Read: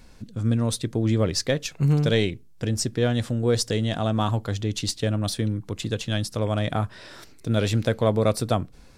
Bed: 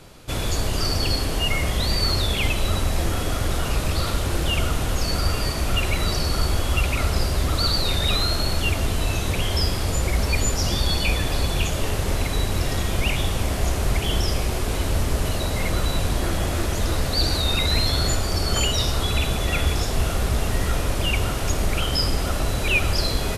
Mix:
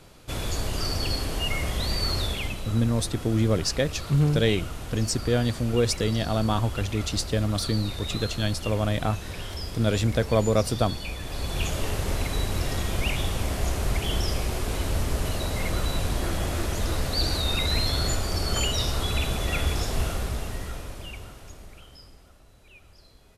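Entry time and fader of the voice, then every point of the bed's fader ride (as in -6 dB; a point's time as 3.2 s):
2.30 s, -1.0 dB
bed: 2.25 s -5 dB
2.64 s -12.5 dB
11.18 s -12.5 dB
11.66 s -4 dB
20.01 s -4 dB
22.42 s -32 dB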